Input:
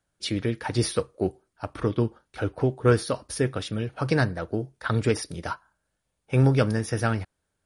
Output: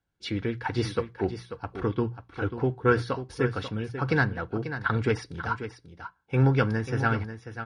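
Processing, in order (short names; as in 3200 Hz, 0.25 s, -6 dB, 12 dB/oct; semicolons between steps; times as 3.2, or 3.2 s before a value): dynamic EQ 1400 Hz, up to +8 dB, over -41 dBFS, Q 0.72; LPF 4800 Hz 12 dB/oct; low shelf 81 Hz +11 dB; notches 60/120/180 Hz; notch comb 610 Hz; echo 0.54 s -10.5 dB; gain -4 dB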